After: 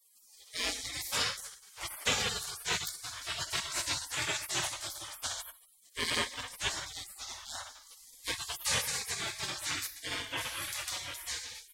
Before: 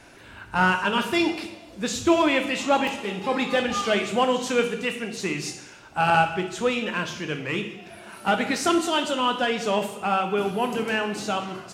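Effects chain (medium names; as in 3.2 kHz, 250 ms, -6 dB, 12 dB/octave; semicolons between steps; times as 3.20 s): spectral gate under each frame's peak -30 dB weak; trim +9 dB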